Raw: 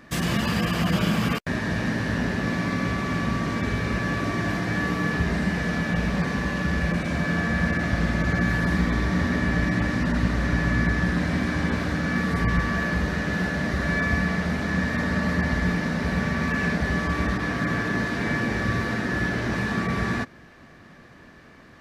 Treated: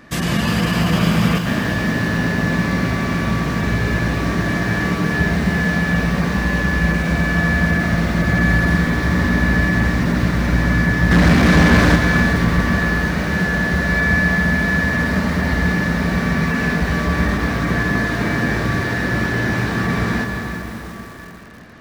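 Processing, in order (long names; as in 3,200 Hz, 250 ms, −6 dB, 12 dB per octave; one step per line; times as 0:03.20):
0:11.11–0:11.96: leveller curve on the samples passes 3
dense smooth reverb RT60 3.9 s, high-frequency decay 0.8×, pre-delay 120 ms, DRR 4 dB
feedback echo at a low word length 350 ms, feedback 55%, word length 6 bits, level −12.5 dB
level +4.5 dB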